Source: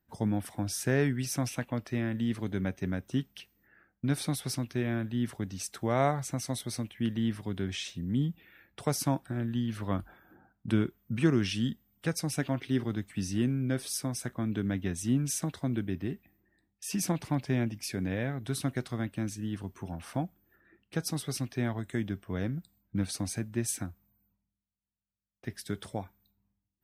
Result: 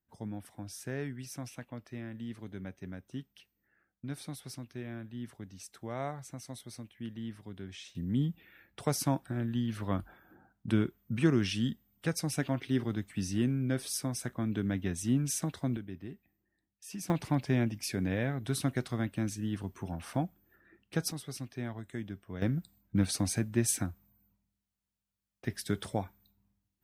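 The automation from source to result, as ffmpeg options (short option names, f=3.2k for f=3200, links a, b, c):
-af "asetnsamples=n=441:p=0,asendcmd='7.95 volume volume -1dB;15.77 volume volume -9.5dB;17.1 volume volume 0.5dB;21.12 volume volume -7dB;22.42 volume volume 3dB',volume=-10.5dB"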